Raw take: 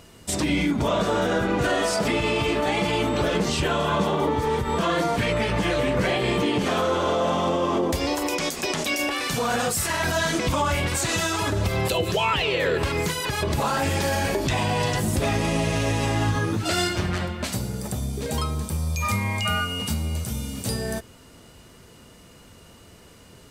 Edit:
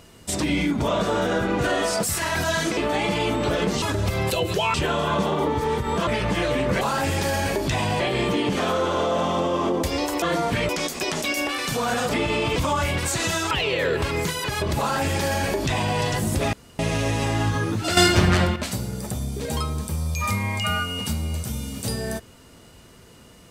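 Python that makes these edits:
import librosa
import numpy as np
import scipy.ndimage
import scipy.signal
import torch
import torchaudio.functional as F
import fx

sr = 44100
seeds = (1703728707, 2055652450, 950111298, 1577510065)

y = fx.edit(x, sr, fx.swap(start_s=2.03, length_s=0.47, other_s=9.71, other_length_s=0.74),
    fx.move(start_s=4.88, length_s=0.47, to_s=8.31),
    fx.move(start_s=11.4, length_s=0.92, to_s=3.55),
    fx.duplicate(start_s=13.6, length_s=1.19, to_s=6.09),
    fx.room_tone_fill(start_s=15.34, length_s=0.26),
    fx.clip_gain(start_s=16.78, length_s=0.59, db=8.0), tone=tone)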